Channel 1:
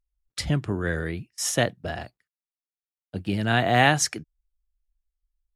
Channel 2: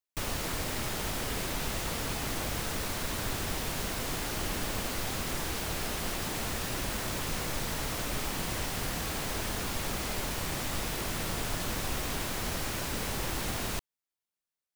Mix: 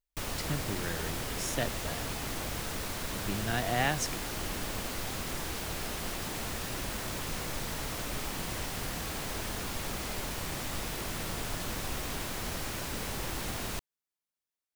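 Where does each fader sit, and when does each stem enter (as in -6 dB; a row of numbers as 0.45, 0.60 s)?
-10.5, -2.5 dB; 0.00, 0.00 s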